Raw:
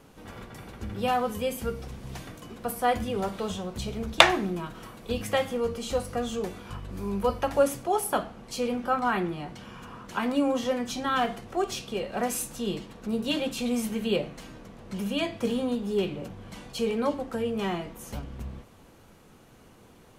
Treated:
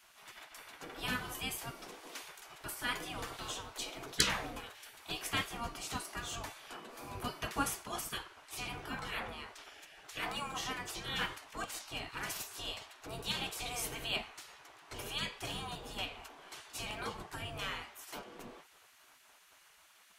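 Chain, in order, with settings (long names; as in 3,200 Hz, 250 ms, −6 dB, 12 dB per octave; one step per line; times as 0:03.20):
gate on every frequency bin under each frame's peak −15 dB weak
notch filter 550 Hz, Q 12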